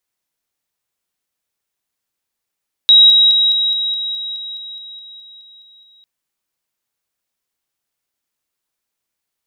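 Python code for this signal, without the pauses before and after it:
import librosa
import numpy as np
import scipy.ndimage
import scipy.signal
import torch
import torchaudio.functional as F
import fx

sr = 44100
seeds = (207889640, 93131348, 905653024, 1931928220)

y = fx.level_ladder(sr, hz=3830.0, from_db=-4.0, step_db=-3.0, steps=15, dwell_s=0.21, gap_s=0.0)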